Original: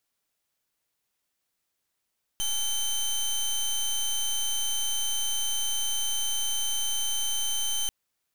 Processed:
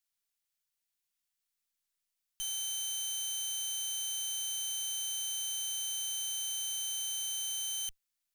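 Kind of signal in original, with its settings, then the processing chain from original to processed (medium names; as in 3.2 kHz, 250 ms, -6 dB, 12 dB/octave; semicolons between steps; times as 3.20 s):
pulse 3.09 kHz, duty 19% -27.5 dBFS 5.49 s
amplifier tone stack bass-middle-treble 5-5-5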